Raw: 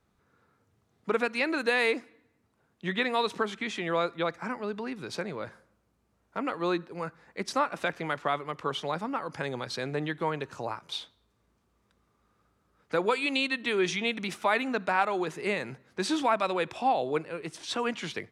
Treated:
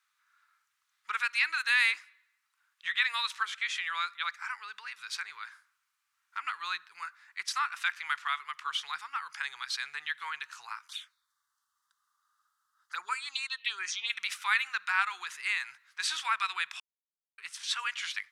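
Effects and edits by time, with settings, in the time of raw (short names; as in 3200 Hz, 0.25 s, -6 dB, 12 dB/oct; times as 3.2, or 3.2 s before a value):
10.88–14.1 envelope phaser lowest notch 400 Hz, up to 3500 Hz, full sweep at -23 dBFS
16.8–17.38 mute
whole clip: inverse Chebyshev high-pass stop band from 630 Hz, stop band 40 dB; gain +3 dB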